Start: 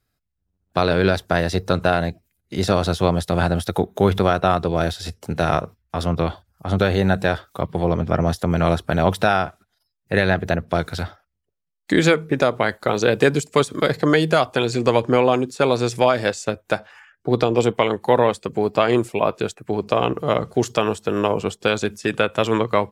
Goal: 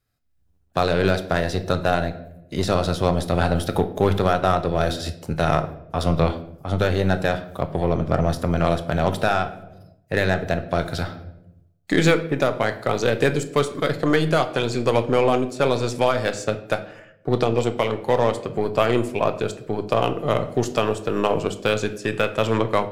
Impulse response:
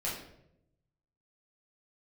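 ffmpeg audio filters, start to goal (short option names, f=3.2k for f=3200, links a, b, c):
-filter_complex "[0:a]aeval=exprs='0.668*(cos(1*acos(clip(val(0)/0.668,-1,1)))-cos(1*PI/2))+0.0188*(cos(6*acos(clip(val(0)/0.668,-1,1)))-cos(6*PI/2))+0.0335*(cos(8*acos(clip(val(0)/0.668,-1,1)))-cos(8*PI/2))':c=same,asplit=2[a][b];[1:a]atrim=start_sample=2205[c];[b][c]afir=irnorm=-1:irlink=0,volume=-11dB[d];[a][d]amix=inputs=2:normalize=0,dynaudnorm=f=190:g=3:m=11.5dB,volume=-5.5dB"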